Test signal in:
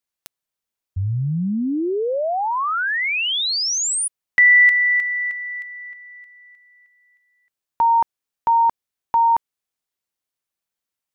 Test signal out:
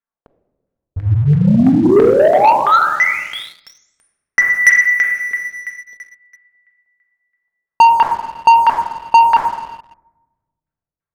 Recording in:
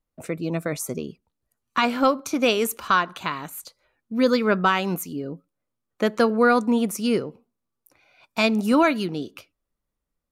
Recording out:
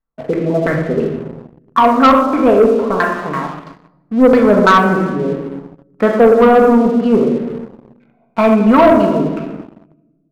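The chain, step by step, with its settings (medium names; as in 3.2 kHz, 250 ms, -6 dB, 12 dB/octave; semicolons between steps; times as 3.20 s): LFO low-pass saw down 3 Hz 380–1800 Hz; simulated room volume 830 m³, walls mixed, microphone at 1.6 m; waveshaping leveller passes 2; trim -1 dB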